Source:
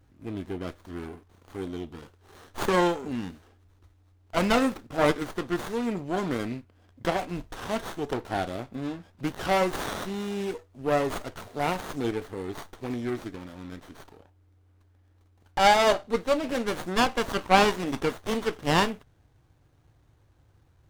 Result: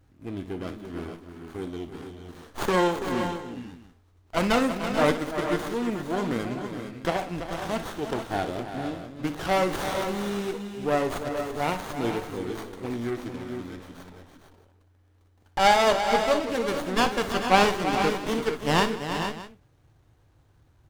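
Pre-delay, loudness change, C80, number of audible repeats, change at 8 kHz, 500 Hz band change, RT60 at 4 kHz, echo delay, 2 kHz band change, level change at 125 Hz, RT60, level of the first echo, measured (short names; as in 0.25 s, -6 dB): none, +1.0 dB, none, 5, +1.5 dB, +1.5 dB, none, 59 ms, +1.5 dB, +1.0 dB, none, -12.5 dB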